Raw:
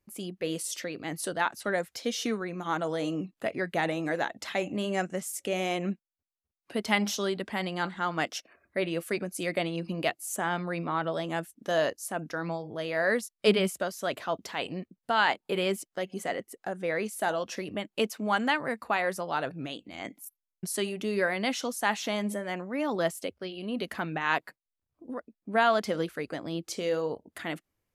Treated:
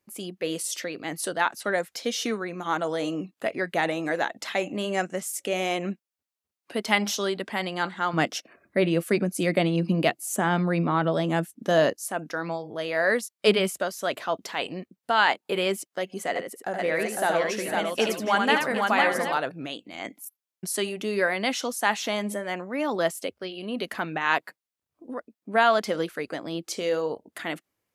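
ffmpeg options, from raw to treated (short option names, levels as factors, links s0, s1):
-filter_complex "[0:a]asettb=1/sr,asplit=3[s0][s1][s2];[s0]atrim=end=8.134[s3];[s1]atrim=start=8.13:end=11.94,asetpts=PTS-STARTPTS,afade=t=in:d=0.004:c=qsin,afade=t=out:st=3.806:d=0.004:c=qsin,equalizer=f=160:w=0.58:g=11.5[s4];[s2]atrim=start=11.936[s5];[s3][s4]acrossfade=d=0.004:c1=hsin:c2=qsin[s6];[s6][s5]acrossfade=d=0.004:c1=qsin:c2=hsin,asettb=1/sr,asplit=3[s7][s8][s9];[s7]atrim=end=16.284[s10];[s8]atrim=start=16.28:end=19.38,asetpts=PTS-STARTPTS,afade=t=in:d=0.004:c=qsin,afade=t=out:st=3.096:d=0.004:c=qsin,aecho=1:1:74|456|505|765:0.562|0.126|0.708|0.282,atrim=end_sample=136710[s11];[s9]atrim=start=19.376[s12];[s10][s11]acrossfade=d=0.004:c1=hsin:c2=qsin[s13];[s13][s12]acrossfade=d=0.004:c1=qsin:c2=hsin,highpass=f=240:p=1,volume=1.58"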